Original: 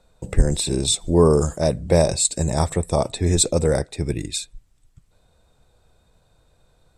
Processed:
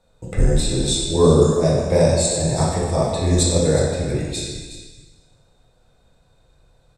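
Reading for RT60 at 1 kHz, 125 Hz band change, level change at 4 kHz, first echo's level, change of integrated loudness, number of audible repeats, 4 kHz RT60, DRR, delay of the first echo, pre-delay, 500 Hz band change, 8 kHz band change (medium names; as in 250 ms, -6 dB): 1.5 s, +2.5 dB, +1.5 dB, -13.5 dB, +2.0 dB, 1, 1.5 s, -5.5 dB, 365 ms, 4 ms, +2.5 dB, -0.5 dB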